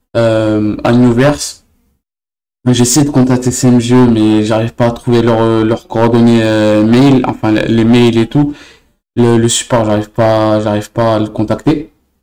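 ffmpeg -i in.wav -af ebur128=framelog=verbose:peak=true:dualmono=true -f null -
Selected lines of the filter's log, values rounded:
Integrated loudness:
  I:          -7.3 LUFS
  Threshold: -17.7 LUFS
Loudness range:
  LRA:         2.6 LU
  Threshold: -27.5 LUFS
  LRA low:    -9.0 LUFS
  LRA high:   -6.3 LUFS
True peak:
  Peak:       -1.4 dBFS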